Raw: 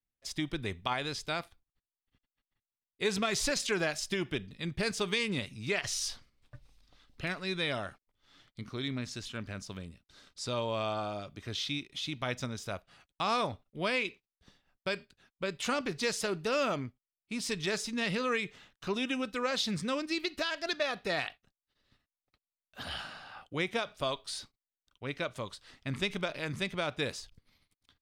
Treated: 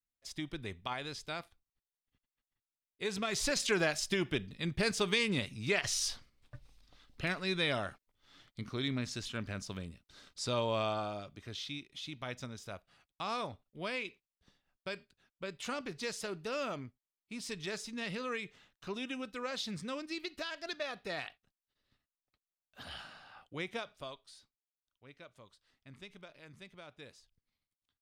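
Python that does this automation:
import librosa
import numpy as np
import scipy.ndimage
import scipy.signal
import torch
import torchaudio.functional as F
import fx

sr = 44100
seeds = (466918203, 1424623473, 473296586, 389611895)

y = fx.gain(x, sr, db=fx.line((3.13, -6.0), (3.68, 0.5), (10.77, 0.5), (11.61, -7.0), (23.8, -7.0), (24.4, -18.5)))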